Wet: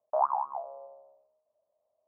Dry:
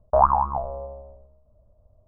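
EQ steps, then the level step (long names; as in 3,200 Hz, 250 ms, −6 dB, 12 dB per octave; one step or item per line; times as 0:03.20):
four-pole ladder band-pass 890 Hz, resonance 30%
0.0 dB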